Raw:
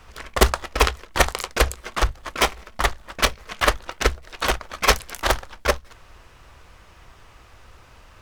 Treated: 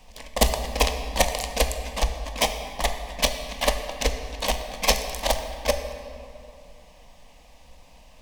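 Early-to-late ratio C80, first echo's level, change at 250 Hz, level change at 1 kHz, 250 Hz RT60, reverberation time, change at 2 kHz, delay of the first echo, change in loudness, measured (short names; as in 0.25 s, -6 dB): 8.5 dB, none, -2.5 dB, -4.0 dB, 3.0 s, 2.7 s, -6.5 dB, none, -3.0 dB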